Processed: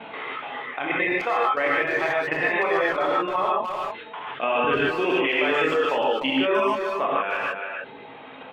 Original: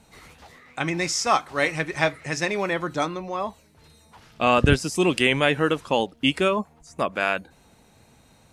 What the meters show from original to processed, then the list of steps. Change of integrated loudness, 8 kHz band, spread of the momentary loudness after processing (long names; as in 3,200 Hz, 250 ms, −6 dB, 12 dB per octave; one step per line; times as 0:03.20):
0.0 dB, below −20 dB, 12 LU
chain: Chebyshev low-pass filter 3,400 Hz, order 6
chorus effect 0.38 Hz, delay 18 ms, depth 5 ms
high-pass filter 370 Hz 12 dB per octave
reverb reduction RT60 0.95 s
treble cut that deepens with the level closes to 2,700 Hz, closed at −27 dBFS
brickwall limiter −22 dBFS, peak gain reduction 11 dB
output level in coarse steps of 11 dB
far-end echo of a speakerphone 300 ms, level −10 dB
reverb whose tail is shaped and stops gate 170 ms rising, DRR −5 dB
envelope flattener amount 50%
level +5.5 dB